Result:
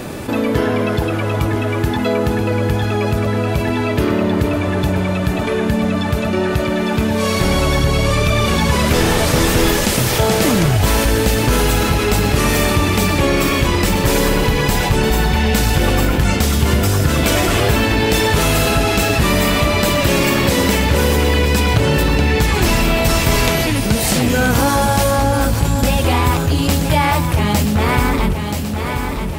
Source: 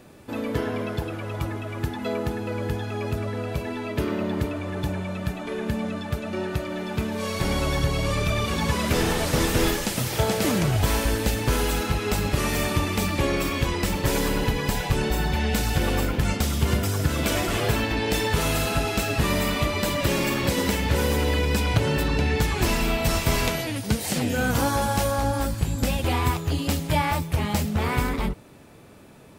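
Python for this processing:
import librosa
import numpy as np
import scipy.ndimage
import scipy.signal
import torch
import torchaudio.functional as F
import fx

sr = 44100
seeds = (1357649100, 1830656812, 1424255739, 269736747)

y = fx.echo_feedback(x, sr, ms=979, feedback_pct=39, wet_db=-12.0)
y = fx.env_flatten(y, sr, amount_pct=50)
y = F.gain(torch.from_numpy(y), 5.5).numpy()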